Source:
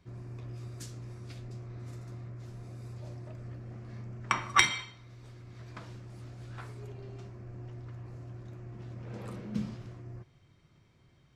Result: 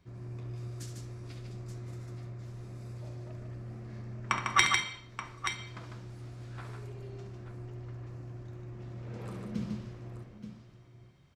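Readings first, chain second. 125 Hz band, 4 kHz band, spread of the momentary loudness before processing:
+1.0 dB, +0.5 dB, 14 LU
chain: multi-tap delay 69/150/879 ms −9.5/−5/−10 dB
level −1.5 dB

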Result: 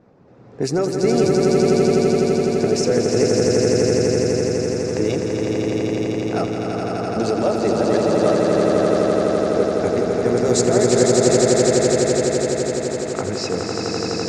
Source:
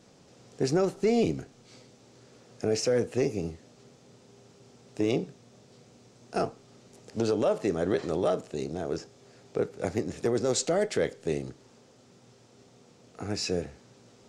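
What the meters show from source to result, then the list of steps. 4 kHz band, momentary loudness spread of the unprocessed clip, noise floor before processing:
+12.5 dB, 12 LU, −58 dBFS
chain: camcorder AGC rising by 11 dB per second
high-shelf EQ 8,600 Hz +6.5 dB
reverb reduction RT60 0.64 s
low-pass that shuts in the quiet parts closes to 1,400 Hz, open at −22.5 dBFS
parametric band 3,100 Hz −6 dB 0.35 octaves
on a send: echo that builds up and dies away 84 ms, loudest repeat 8, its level −4 dB
on the sum: level +5 dB

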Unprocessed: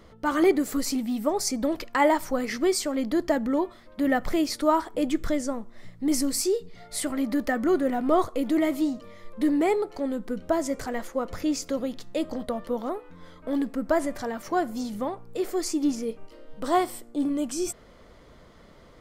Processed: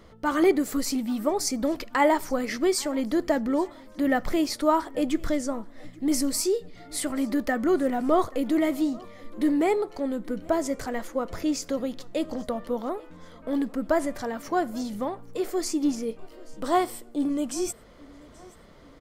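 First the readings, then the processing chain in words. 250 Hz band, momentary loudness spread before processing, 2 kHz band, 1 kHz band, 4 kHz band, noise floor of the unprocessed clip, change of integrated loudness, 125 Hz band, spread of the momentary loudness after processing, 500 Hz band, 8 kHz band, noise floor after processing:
0.0 dB, 9 LU, 0.0 dB, 0.0 dB, 0.0 dB, −52 dBFS, 0.0 dB, 0.0 dB, 9 LU, 0.0 dB, 0.0 dB, −50 dBFS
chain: repeating echo 831 ms, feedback 42%, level −24 dB

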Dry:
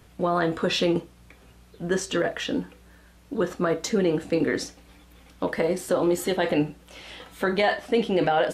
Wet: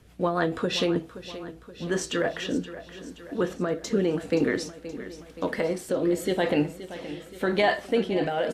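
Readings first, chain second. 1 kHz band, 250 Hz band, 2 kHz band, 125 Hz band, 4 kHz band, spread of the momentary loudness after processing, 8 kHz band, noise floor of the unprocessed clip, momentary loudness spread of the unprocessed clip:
−3.5 dB, −1.0 dB, −1.5 dB, −1.5 dB, −2.0 dB, 14 LU, −2.5 dB, −54 dBFS, 12 LU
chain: rotating-speaker cabinet horn 6.7 Hz, later 0.9 Hz, at 0:00.33
repeating echo 524 ms, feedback 59%, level −14 dB

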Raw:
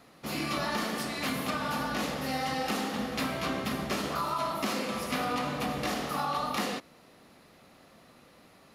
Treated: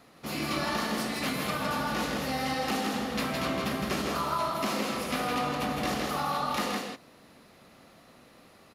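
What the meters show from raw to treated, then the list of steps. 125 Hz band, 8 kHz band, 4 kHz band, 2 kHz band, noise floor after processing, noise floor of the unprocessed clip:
+1.5 dB, +1.5 dB, +1.5 dB, +1.5 dB, −57 dBFS, −58 dBFS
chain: single-tap delay 162 ms −4 dB

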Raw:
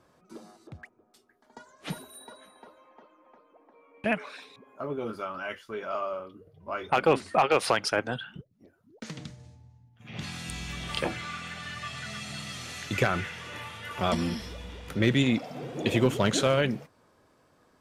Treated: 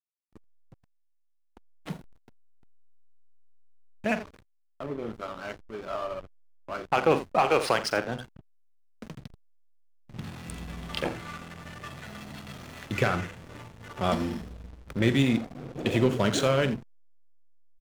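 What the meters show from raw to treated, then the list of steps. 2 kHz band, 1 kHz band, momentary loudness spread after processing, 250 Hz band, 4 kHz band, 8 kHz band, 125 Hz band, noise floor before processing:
−1.5 dB, 0.0 dB, 20 LU, +0.5 dB, −2.0 dB, −2.5 dB, +0.5 dB, −65 dBFS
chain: multi-tap delay 44/84 ms −10.5/−13 dB
slack as between gear wheels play −31 dBFS

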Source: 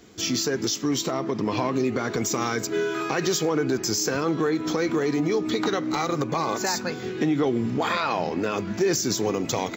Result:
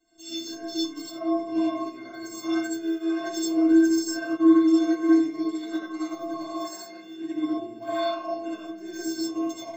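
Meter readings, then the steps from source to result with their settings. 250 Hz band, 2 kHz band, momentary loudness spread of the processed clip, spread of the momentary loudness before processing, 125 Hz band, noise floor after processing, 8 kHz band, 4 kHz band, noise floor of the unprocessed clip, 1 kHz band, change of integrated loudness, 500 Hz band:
+3.0 dB, −7.5 dB, 16 LU, 3 LU, below −20 dB, −43 dBFS, −9.5 dB, −6.5 dB, −34 dBFS, −6.5 dB, −0.5 dB, −4.5 dB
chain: stiff-string resonator 320 Hz, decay 0.59 s, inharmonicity 0.03
comb and all-pass reverb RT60 0.6 s, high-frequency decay 0.35×, pre-delay 40 ms, DRR −7 dB
expander for the loud parts 1.5 to 1, over −42 dBFS
level +9 dB

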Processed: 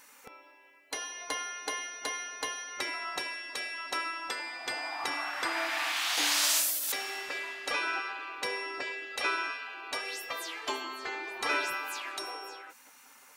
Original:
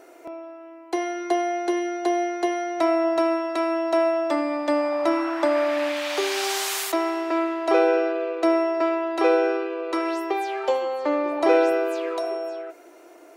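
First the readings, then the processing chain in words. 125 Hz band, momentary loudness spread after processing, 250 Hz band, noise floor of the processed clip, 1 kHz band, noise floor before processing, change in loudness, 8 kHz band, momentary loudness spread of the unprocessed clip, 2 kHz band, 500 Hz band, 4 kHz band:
can't be measured, 10 LU, −24.0 dB, −57 dBFS, −10.5 dB, −48 dBFS, −9.0 dB, +2.5 dB, 8 LU, −1.0 dB, −22.0 dB, +1.0 dB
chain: gate on every frequency bin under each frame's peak −15 dB weak
high-shelf EQ 4,400 Hz +8 dB
level −1 dB

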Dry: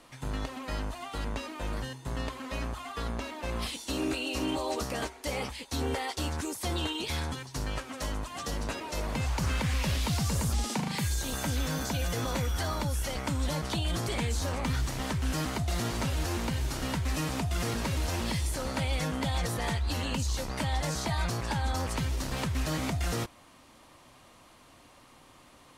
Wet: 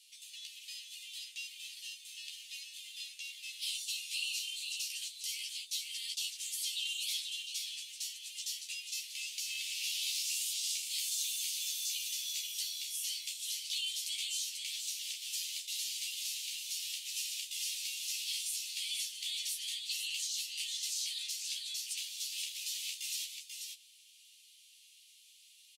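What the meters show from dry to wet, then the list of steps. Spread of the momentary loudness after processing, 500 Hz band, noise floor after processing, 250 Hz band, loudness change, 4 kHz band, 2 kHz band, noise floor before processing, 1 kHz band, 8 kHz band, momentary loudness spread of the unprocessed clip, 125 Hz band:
10 LU, below −40 dB, −61 dBFS, below −40 dB, −4.5 dB, +2.5 dB, −7.5 dB, −56 dBFS, below −40 dB, +2.5 dB, 6 LU, below −40 dB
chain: Butterworth high-pass 2,700 Hz 48 dB per octave
double-tracking delay 13 ms −3.5 dB
on a send: single-tap delay 489 ms −5.5 dB

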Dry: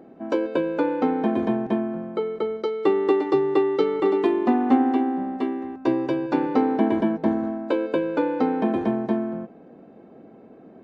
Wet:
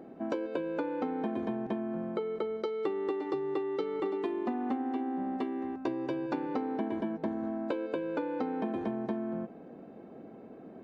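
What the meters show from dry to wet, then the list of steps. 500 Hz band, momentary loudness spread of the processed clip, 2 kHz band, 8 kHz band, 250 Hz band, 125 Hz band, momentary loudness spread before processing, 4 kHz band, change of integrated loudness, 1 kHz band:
−11.0 dB, 9 LU, −10.0 dB, can't be measured, −11.0 dB, −9.5 dB, 7 LU, −10.0 dB, −11.0 dB, −11.0 dB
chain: downward compressor 6 to 1, threshold −29 dBFS, peak gain reduction 15.5 dB
level −1.5 dB

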